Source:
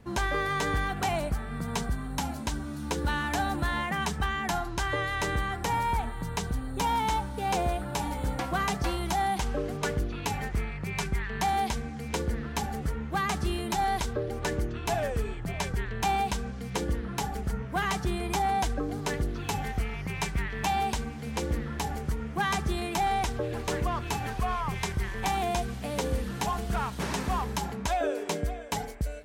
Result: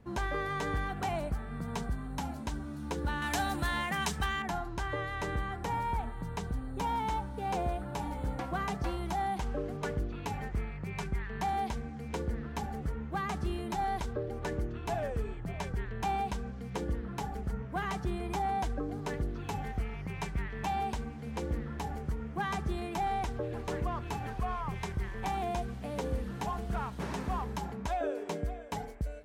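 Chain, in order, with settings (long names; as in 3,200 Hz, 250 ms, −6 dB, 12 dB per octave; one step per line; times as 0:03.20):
high-shelf EQ 2,200 Hz −7 dB, from 0:03.22 +5 dB, from 0:04.42 −9 dB
level −4 dB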